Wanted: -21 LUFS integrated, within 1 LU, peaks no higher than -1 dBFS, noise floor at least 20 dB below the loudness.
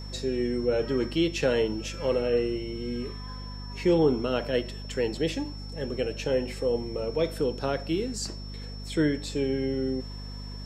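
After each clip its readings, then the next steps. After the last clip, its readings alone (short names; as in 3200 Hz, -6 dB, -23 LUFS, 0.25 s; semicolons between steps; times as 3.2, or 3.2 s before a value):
hum 50 Hz; harmonics up to 250 Hz; hum level -36 dBFS; steady tone 5400 Hz; tone level -45 dBFS; loudness -28.5 LUFS; peak -12.5 dBFS; loudness target -21.0 LUFS
-> de-hum 50 Hz, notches 5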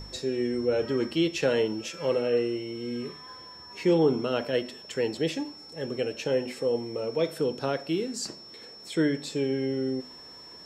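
hum none; steady tone 5400 Hz; tone level -45 dBFS
-> notch 5400 Hz, Q 30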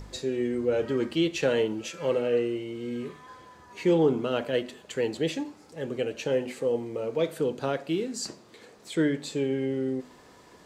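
steady tone none; loudness -29.0 LUFS; peak -13.0 dBFS; loudness target -21.0 LUFS
-> gain +8 dB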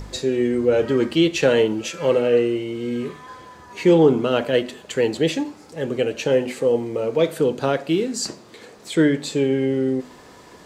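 loudness -21.0 LUFS; peak -5.0 dBFS; noise floor -46 dBFS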